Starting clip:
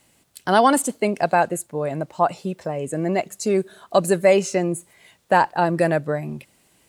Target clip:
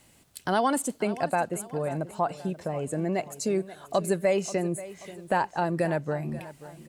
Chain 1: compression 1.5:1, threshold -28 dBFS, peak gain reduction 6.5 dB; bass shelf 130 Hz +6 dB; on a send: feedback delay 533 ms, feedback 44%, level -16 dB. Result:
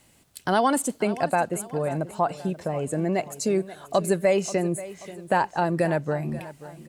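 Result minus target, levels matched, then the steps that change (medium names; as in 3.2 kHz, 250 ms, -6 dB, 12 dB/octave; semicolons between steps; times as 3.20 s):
compression: peak gain reduction -3 dB
change: compression 1.5:1, threshold -37.5 dBFS, peak gain reduction 9.5 dB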